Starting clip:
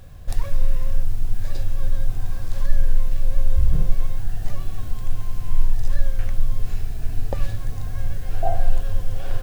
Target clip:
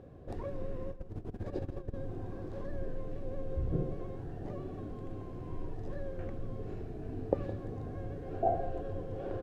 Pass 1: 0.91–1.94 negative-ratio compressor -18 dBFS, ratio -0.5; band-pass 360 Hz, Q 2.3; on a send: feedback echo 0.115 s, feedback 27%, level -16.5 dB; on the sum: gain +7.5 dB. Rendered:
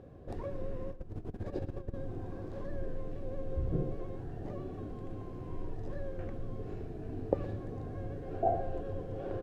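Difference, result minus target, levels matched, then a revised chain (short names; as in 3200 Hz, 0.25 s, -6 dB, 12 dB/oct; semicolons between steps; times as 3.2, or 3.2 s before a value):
echo 50 ms early
0.91–1.94 negative-ratio compressor -18 dBFS, ratio -0.5; band-pass 360 Hz, Q 2.3; on a send: feedback echo 0.165 s, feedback 27%, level -16.5 dB; on the sum: gain +7.5 dB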